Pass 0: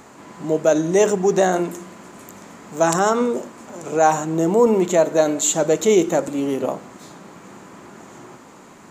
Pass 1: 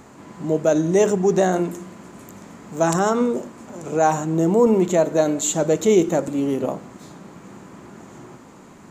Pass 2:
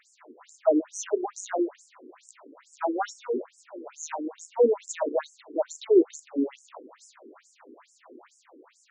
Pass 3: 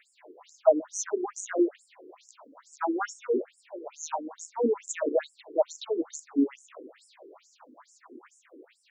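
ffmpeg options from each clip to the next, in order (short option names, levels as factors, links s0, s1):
-af "lowshelf=f=270:g=9,volume=0.668"
-af "afftfilt=real='re*between(b*sr/1024,330*pow(7300/330,0.5+0.5*sin(2*PI*2.3*pts/sr))/1.41,330*pow(7300/330,0.5+0.5*sin(2*PI*2.3*pts/sr))*1.41)':imag='im*between(b*sr/1024,330*pow(7300/330,0.5+0.5*sin(2*PI*2.3*pts/sr))/1.41,330*pow(7300/330,0.5+0.5*sin(2*PI*2.3*pts/sr))*1.41)':win_size=1024:overlap=0.75,volume=0.841"
-filter_complex "[0:a]asplit=2[s0][s1];[s1]afreqshift=0.58[s2];[s0][s2]amix=inputs=2:normalize=1,volume=1.41"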